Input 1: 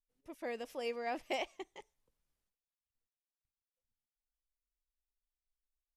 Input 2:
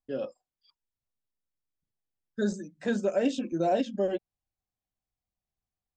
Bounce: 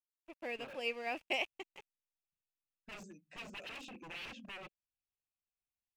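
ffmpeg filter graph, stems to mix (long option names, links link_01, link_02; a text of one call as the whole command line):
ffmpeg -i stem1.wav -i stem2.wav -filter_complex "[0:a]aeval=exprs='sgn(val(0))*max(abs(val(0))-0.002,0)':channel_layout=same,volume=-1.5dB[link_01];[1:a]aeval=exprs='0.0251*(abs(mod(val(0)/0.0251+3,4)-2)-1)':channel_layout=same,adelay=500,volume=-14dB[link_02];[link_01][link_02]amix=inputs=2:normalize=0,equalizer=frequency=2600:width_type=o:width=0.37:gain=14.5" out.wav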